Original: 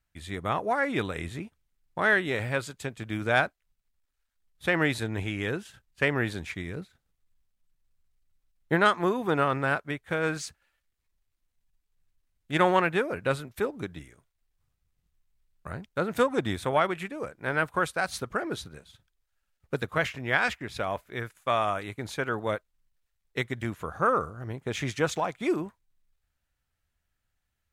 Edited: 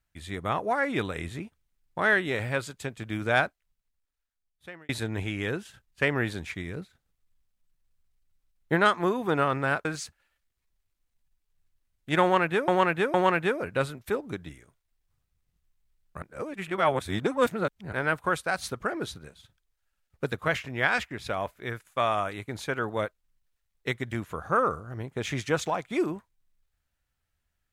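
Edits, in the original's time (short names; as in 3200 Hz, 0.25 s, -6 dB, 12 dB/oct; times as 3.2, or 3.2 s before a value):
3.45–4.89 fade out
9.85–10.27 cut
12.64–13.1 loop, 3 plays
15.72–17.43 reverse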